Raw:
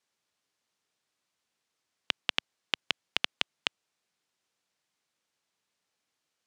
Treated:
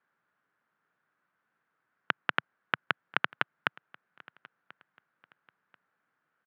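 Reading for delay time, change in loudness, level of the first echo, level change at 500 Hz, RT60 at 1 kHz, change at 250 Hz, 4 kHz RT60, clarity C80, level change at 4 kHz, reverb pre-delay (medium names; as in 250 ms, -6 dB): 1037 ms, 0.0 dB, -24.0 dB, +4.0 dB, no reverb, +5.0 dB, no reverb, no reverb, -9.0 dB, no reverb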